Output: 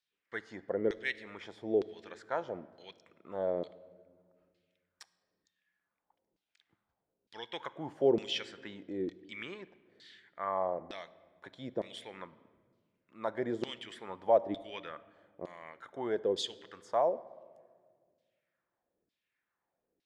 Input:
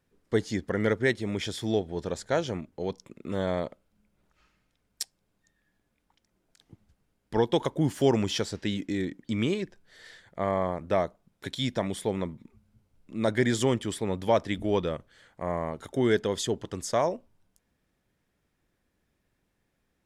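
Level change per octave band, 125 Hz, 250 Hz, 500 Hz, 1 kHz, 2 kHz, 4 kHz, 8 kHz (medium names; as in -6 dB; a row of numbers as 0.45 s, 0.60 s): -19.5 dB, -12.0 dB, -6.0 dB, -5.0 dB, -8.0 dB, -6.5 dB, under -15 dB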